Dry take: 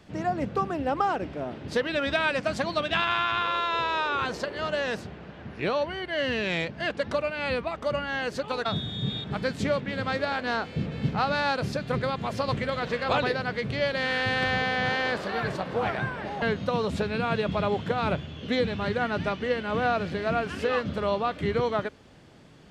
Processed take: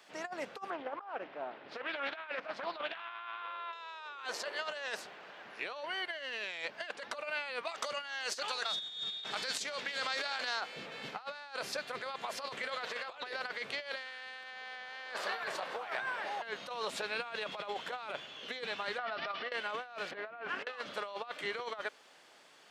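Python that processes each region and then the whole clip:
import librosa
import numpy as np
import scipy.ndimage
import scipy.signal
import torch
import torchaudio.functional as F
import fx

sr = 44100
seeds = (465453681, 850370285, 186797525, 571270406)

y = fx.chain(x, sr, fx.air_absorb(metres=340.0),
    fx.doppler_dist(depth_ms=0.31), at=(0.7, 3.73))
y = fx.chain(y, sr, fx.peak_eq(hz=5900.0, db=11.0, octaves=1.9),
    fx.over_compress(threshold_db=-31.0, ratio=-1.0),
    fx.echo_single(ms=381, db=-20.5), at=(7.65, 10.61))
y = fx.chain(y, sr, fx.cheby1_lowpass(hz=5400.0, order=6),
    fx.over_compress(threshold_db=-32.0, ratio=-0.5),
    fx.small_body(hz=(680.0, 1200.0), ring_ms=60, db=13), at=(18.98, 19.52))
y = fx.chain(y, sr, fx.lowpass(hz=1900.0, slope=12),
    fx.over_compress(threshold_db=-33.0, ratio=-0.5), at=(20.11, 20.67))
y = scipy.signal.sosfilt(scipy.signal.butter(2, 750.0, 'highpass', fs=sr, output='sos'), y)
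y = fx.high_shelf(y, sr, hz=7200.0, db=5.0)
y = fx.over_compress(y, sr, threshold_db=-34.0, ratio=-0.5)
y = F.gain(torch.from_numpy(y), -4.5).numpy()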